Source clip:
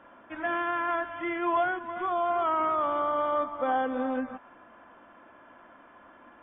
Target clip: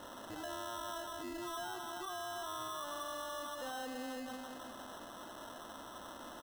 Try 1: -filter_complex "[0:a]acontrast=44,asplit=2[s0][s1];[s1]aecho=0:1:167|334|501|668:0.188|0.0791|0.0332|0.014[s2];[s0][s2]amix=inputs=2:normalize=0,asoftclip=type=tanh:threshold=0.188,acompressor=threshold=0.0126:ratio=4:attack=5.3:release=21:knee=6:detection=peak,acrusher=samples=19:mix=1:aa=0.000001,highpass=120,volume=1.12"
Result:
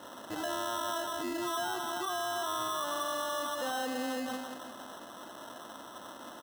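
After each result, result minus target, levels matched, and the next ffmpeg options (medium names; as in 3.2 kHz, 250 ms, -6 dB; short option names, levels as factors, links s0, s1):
compression: peak gain reduction -8.5 dB; 125 Hz band -5.5 dB
-filter_complex "[0:a]acontrast=44,asplit=2[s0][s1];[s1]aecho=0:1:167|334|501|668:0.188|0.0791|0.0332|0.014[s2];[s0][s2]amix=inputs=2:normalize=0,asoftclip=type=tanh:threshold=0.188,acompressor=threshold=0.00355:ratio=4:attack=5.3:release=21:knee=6:detection=peak,acrusher=samples=19:mix=1:aa=0.000001,highpass=120,volume=1.12"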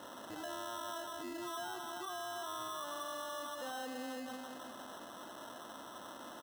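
125 Hz band -3.5 dB
-filter_complex "[0:a]acontrast=44,asplit=2[s0][s1];[s1]aecho=0:1:167|334|501|668:0.188|0.0791|0.0332|0.014[s2];[s0][s2]amix=inputs=2:normalize=0,asoftclip=type=tanh:threshold=0.188,acompressor=threshold=0.00355:ratio=4:attack=5.3:release=21:knee=6:detection=peak,acrusher=samples=19:mix=1:aa=0.000001,volume=1.12"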